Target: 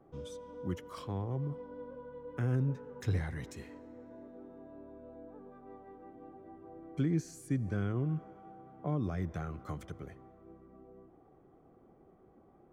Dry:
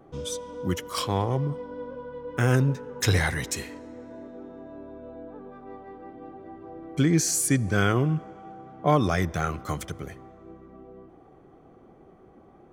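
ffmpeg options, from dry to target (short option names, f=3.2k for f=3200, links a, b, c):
-filter_complex "[0:a]acrossover=split=350[a][b];[b]acompressor=threshold=-32dB:ratio=5[c];[a][c]amix=inputs=2:normalize=0,highshelf=f=2.7k:g=-11.5,volume=-8.5dB"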